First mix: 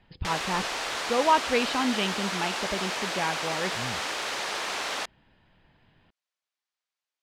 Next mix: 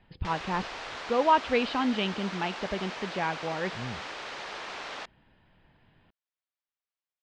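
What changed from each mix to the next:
background -6.0 dB; master: add air absorption 120 m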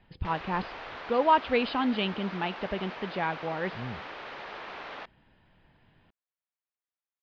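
background: add air absorption 260 m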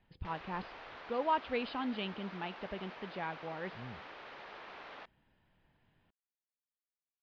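speech -9.5 dB; background -8.5 dB

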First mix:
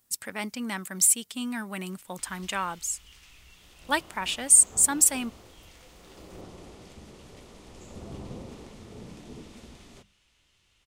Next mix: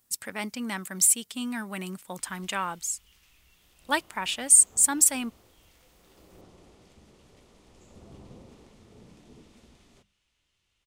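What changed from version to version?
background -8.5 dB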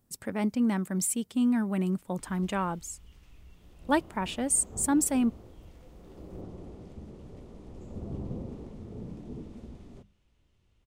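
background +3.5 dB; master: add tilt shelf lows +10 dB, about 910 Hz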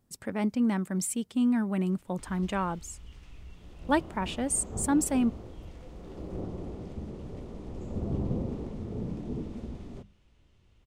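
background +6.0 dB; master: add high shelf 9700 Hz -8 dB

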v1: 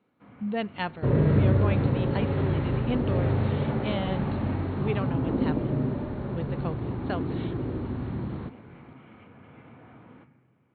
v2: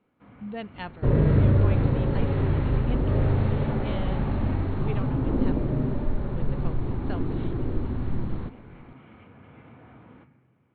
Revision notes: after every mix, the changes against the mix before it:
speech -6.0 dB; master: remove HPF 92 Hz 12 dB/oct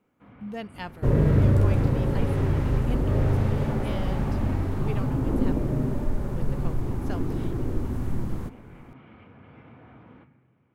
master: remove brick-wall FIR low-pass 4400 Hz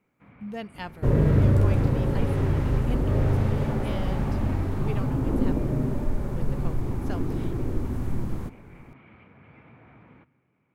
first sound: send -10.0 dB

